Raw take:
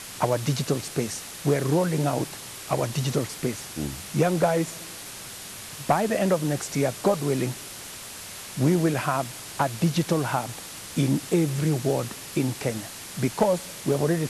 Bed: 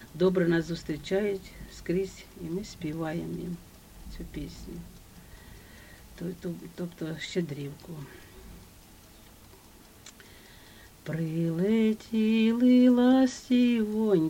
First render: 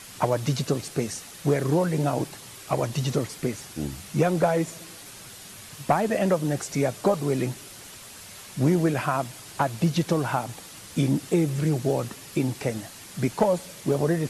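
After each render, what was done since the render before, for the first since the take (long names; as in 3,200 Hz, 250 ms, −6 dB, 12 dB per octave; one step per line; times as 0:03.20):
broadband denoise 6 dB, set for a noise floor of −40 dBFS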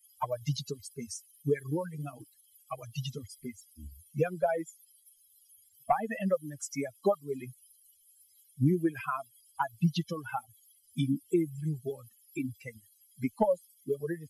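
spectral dynamics exaggerated over time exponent 3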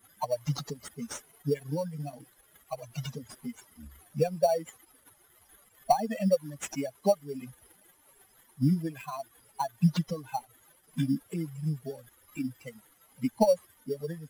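phaser with its sweep stopped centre 360 Hz, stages 6
in parallel at −3 dB: sample-rate reduction 5,100 Hz, jitter 0%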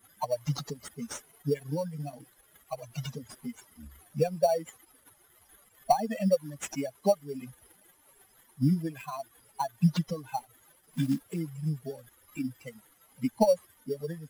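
0:10.37–0:11.40: one scale factor per block 5 bits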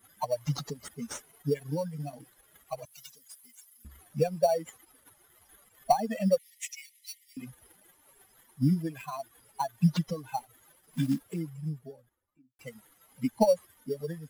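0:02.85–0:03.85: first difference
0:06.38–0:07.37: linear-phase brick-wall high-pass 1,800 Hz
0:11.09–0:12.59: fade out and dull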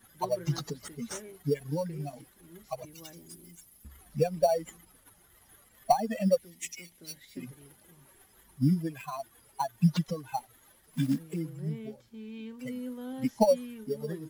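mix in bed −18.5 dB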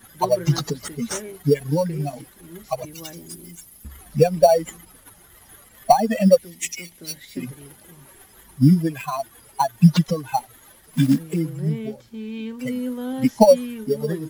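level +11 dB
brickwall limiter −2 dBFS, peak gain reduction 2 dB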